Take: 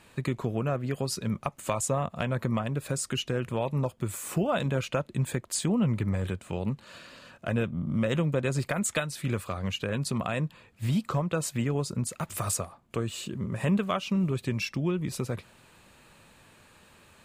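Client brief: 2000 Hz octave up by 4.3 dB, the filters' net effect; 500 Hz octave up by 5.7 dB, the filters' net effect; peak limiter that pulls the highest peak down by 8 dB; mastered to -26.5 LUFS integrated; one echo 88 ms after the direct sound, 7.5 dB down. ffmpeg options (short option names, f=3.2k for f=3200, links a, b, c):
-af "equalizer=f=500:t=o:g=6.5,equalizer=f=2k:t=o:g=5.5,alimiter=limit=-17.5dB:level=0:latency=1,aecho=1:1:88:0.422,volume=2.5dB"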